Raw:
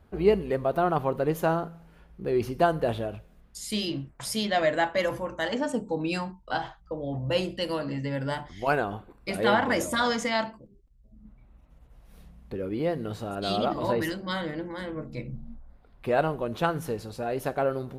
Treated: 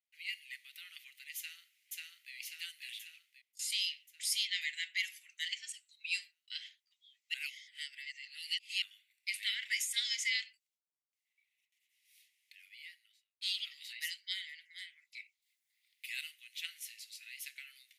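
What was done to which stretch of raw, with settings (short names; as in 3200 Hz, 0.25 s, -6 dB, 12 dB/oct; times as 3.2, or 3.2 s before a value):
1.37–2.33 echo throw 0.54 s, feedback 60%, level -0.5 dB
3.07–3.59 fade out, to -19.5 dB
7.34–8.82 reverse
12.62–13.41 studio fade out
15.42–16.31 high shelf 4600 Hz +9.5 dB
whole clip: gate with hold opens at -47 dBFS; Chebyshev high-pass 2000 Hz, order 6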